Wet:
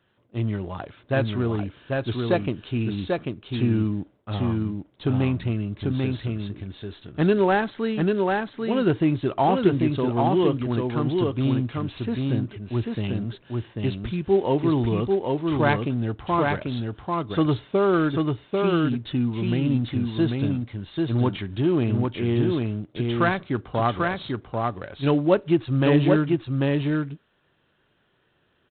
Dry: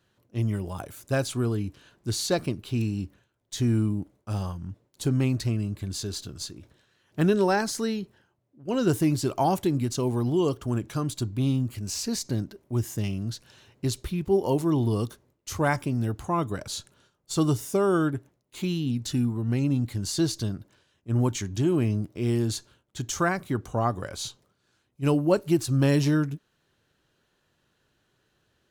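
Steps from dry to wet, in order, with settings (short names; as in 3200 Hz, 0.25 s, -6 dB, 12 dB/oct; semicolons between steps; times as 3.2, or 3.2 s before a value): low shelf 170 Hz -5 dB; echo 0.792 s -3 dB; gain +3.5 dB; IMA ADPCM 32 kbps 8000 Hz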